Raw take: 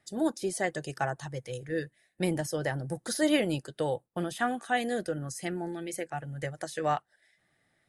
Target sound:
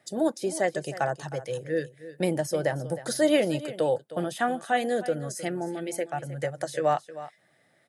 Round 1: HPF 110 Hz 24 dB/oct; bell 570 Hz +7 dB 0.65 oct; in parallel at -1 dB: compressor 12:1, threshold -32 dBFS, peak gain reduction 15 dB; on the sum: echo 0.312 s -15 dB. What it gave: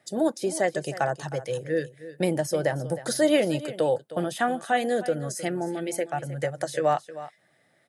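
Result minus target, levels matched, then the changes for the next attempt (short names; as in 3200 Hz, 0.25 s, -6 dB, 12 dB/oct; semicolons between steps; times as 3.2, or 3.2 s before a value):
compressor: peak gain reduction -8.5 dB
change: compressor 12:1, threshold -41.5 dBFS, peak gain reduction 23.5 dB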